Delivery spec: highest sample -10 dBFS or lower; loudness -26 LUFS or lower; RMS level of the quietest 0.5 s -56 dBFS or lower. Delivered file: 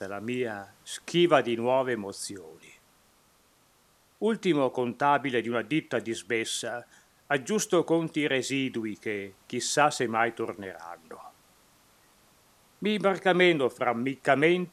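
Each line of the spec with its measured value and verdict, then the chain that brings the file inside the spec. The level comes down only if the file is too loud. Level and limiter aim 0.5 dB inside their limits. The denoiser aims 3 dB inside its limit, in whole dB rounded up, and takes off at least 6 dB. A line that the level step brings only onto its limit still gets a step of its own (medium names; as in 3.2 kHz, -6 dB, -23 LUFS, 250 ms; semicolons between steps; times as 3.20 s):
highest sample -6.0 dBFS: fail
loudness -27.5 LUFS: pass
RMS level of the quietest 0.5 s -64 dBFS: pass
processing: peak limiter -10.5 dBFS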